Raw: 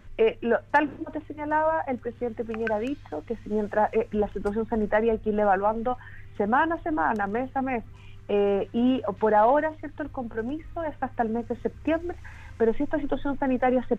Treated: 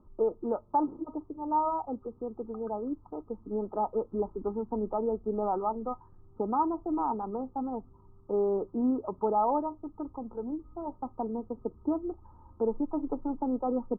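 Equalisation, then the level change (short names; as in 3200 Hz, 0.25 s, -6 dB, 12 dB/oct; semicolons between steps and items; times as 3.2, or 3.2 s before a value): rippled Chebyshev low-pass 1300 Hz, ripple 9 dB; bell 100 Hz -4.5 dB 0.44 oct; -1.5 dB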